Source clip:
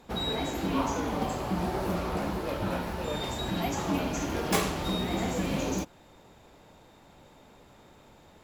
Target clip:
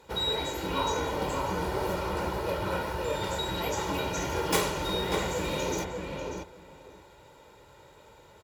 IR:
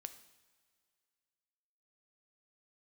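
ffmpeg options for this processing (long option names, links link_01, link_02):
-filter_complex "[0:a]highpass=44,lowshelf=frequency=430:gain=-4,aecho=1:1:2.1:0.61,asplit=2[link_01][link_02];[link_02]adelay=592,lowpass=frequency=2500:poles=1,volume=-3.5dB,asplit=2[link_03][link_04];[link_04]adelay=592,lowpass=frequency=2500:poles=1,volume=0.16,asplit=2[link_05][link_06];[link_06]adelay=592,lowpass=frequency=2500:poles=1,volume=0.16[link_07];[link_03][link_05][link_07]amix=inputs=3:normalize=0[link_08];[link_01][link_08]amix=inputs=2:normalize=0"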